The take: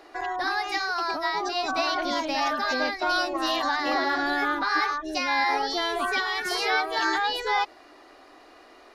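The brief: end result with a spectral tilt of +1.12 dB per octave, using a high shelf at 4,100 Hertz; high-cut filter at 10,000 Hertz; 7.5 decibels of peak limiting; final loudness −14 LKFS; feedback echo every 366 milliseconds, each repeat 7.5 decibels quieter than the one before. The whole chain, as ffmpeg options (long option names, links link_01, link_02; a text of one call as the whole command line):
ffmpeg -i in.wav -af "lowpass=10000,highshelf=frequency=4100:gain=-8,alimiter=limit=-20dB:level=0:latency=1,aecho=1:1:366|732|1098|1464|1830:0.422|0.177|0.0744|0.0312|0.0131,volume=14dB" out.wav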